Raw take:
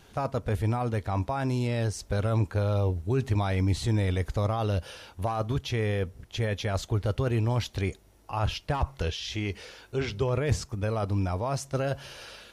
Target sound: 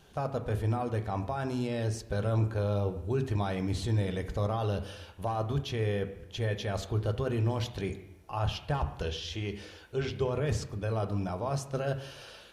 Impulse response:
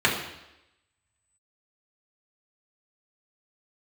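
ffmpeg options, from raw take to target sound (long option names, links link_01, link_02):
-filter_complex "[0:a]asplit=2[link_01][link_02];[1:a]atrim=start_sample=2205,highshelf=frequency=4700:gain=-11[link_03];[link_02][link_03]afir=irnorm=-1:irlink=0,volume=-20.5dB[link_04];[link_01][link_04]amix=inputs=2:normalize=0,volume=-5dB"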